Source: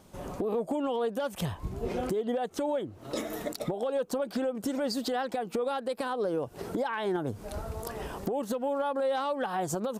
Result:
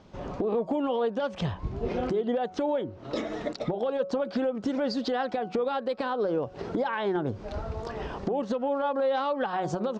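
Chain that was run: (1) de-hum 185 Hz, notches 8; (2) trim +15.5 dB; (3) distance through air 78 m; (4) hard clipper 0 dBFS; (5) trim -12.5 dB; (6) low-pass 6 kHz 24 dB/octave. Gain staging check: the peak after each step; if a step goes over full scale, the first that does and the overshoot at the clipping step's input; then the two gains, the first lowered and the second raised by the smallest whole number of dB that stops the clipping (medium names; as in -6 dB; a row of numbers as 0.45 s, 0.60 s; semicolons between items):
-21.0 dBFS, -5.5 dBFS, -5.5 dBFS, -5.5 dBFS, -18.0 dBFS, -18.0 dBFS; nothing clips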